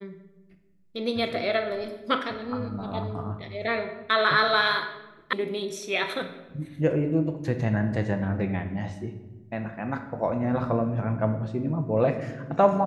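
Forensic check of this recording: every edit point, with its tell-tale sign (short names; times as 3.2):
5.33 sound cut off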